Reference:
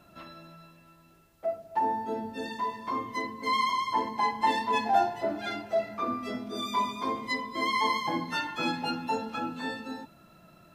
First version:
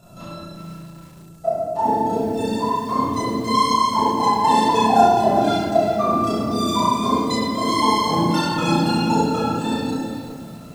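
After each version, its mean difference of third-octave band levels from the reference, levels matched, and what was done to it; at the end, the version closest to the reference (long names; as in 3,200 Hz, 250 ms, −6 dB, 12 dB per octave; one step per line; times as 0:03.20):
6.5 dB: graphic EQ with 10 bands 125 Hz +6 dB, 2,000 Hz −12 dB, 8,000 Hz +9 dB
amplitude modulation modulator 29 Hz, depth 95%
rectangular room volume 920 cubic metres, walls mixed, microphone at 6.7 metres
feedback echo at a low word length 379 ms, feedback 35%, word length 7 bits, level −12 dB
level +4 dB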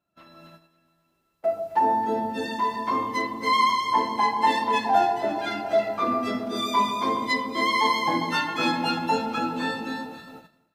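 3.0 dB: low-shelf EQ 86 Hz −6.5 dB
on a send: delay that swaps between a low-pass and a high-pass 135 ms, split 1,200 Hz, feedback 71%, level −8 dB
on the sum: noise gate −49 dBFS, range −17 dB
automatic gain control gain up to 13 dB
level −6.5 dB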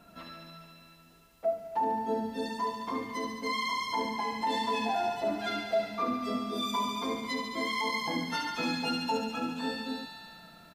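4.5 dB: brickwall limiter −22 dBFS, peak gain reduction 9.5 dB
on a send: delay with a high-pass on its return 71 ms, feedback 79%, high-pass 1,600 Hz, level −4.5 dB
on the sum: dynamic equaliser 1,800 Hz, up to −4 dB, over −46 dBFS, Q 1.2
comb filter 4.3 ms, depth 43%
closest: second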